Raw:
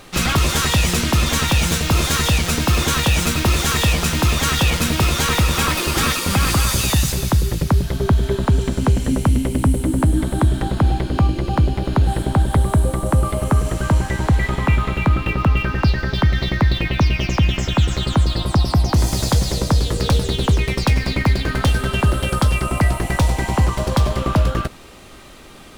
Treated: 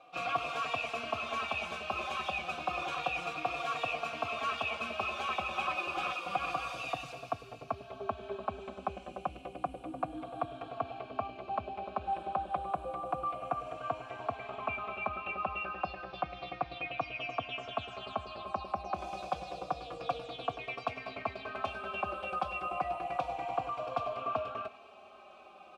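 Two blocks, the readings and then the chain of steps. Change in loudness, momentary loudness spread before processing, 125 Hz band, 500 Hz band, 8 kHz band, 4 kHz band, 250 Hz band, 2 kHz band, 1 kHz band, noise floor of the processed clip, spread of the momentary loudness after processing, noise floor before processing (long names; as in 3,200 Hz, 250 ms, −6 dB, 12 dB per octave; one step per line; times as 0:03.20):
−18.5 dB, 2 LU, −34.5 dB, −13.5 dB, below −30 dB, −21.0 dB, −26.5 dB, −14.5 dB, −9.5 dB, −53 dBFS, 6 LU, −32 dBFS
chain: formant filter a
high-shelf EQ 6,300 Hz −4.5 dB
reversed playback
upward compression, threshold −44 dBFS
reversed playback
dynamic equaliser 2,000 Hz, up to +4 dB, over −48 dBFS, Q 1.1
barber-pole flanger 3.7 ms −0.3 Hz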